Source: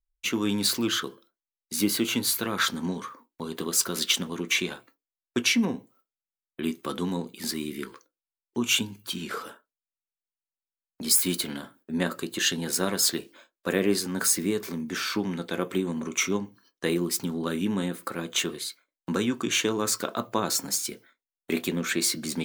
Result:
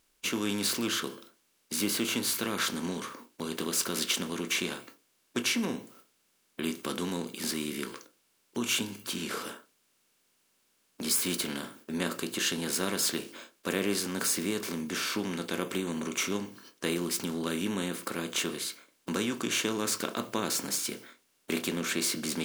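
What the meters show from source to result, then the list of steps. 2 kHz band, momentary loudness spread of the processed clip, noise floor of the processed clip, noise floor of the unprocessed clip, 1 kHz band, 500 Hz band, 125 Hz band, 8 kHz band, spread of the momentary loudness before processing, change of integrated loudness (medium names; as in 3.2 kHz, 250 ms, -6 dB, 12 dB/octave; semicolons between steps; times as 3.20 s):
-3.5 dB, 10 LU, -72 dBFS, under -85 dBFS, -3.5 dB, -4.0 dB, -5.5 dB, -4.0 dB, 12 LU, -4.0 dB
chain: spectral levelling over time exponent 0.6; trim -8.5 dB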